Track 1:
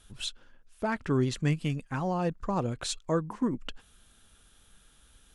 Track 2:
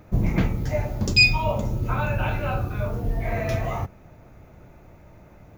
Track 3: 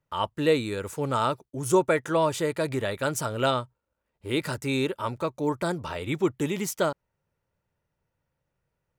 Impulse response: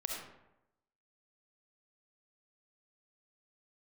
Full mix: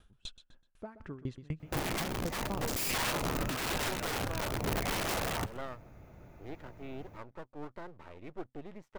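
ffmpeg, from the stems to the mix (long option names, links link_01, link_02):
-filter_complex "[0:a]lowpass=frequency=1500:poles=1,aeval=exprs='val(0)*pow(10,-38*if(lt(mod(4*n/s,1),2*abs(4)/1000),1-mod(4*n/s,1)/(2*abs(4)/1000),(mod(4*n/s,1)-2*abs(4)/1000)/(1-2*abs(4)/1000))/20)':channel_layout=same,volume=2.5dB,asplit=2[link_01][link_02];[link_02]volume=-15dB[link_03];[1:a]aeval=exprs='(mod(11.9*val(0)+1,2)-1)/11.9':channel_layout=same,adelay=1600,volume=-5.5dB,asplit=2[link_04][link_05];[link_05]volume=-21dB[link_06];[2:a]lowpass=1700,aeval=exprs='max(val(0),0)':channel_layout=same,adelay=2150,volume=-13.5dB[link_07];[link_03][link_06]amix=inputs=2:normalize=0,aecho=0:1:126|252|378|504:1|0.3|0.09|0.027[link_08];[link_01][link_04][link_07][link_08]amix=inputs=4:normalize=0,alimiter=level_in=1dB:limit=-24dB:level=0:latency=1:release=292,volume=-1dB"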